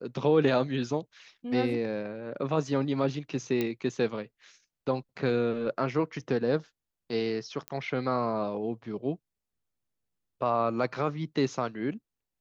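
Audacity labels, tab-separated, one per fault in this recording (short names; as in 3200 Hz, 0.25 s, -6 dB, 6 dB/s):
3.610000	3.610000	pop -16 dBFS
7.680000	7.680000	pop -20 dBFS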